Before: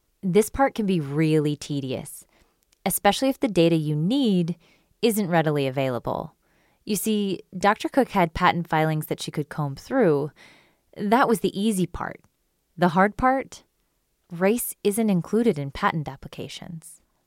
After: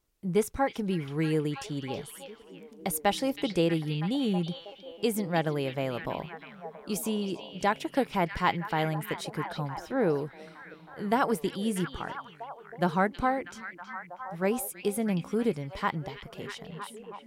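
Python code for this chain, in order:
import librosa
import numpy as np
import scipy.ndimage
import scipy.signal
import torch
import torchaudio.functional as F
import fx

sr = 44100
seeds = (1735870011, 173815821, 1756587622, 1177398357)

y = fx.echo_stepped(x, sr, ms=321, hz=3300.0, octaves=-0.7, feedback_pct=70, wet_db=-4)
y = y * librosa.db_to_amplitude(-7.0)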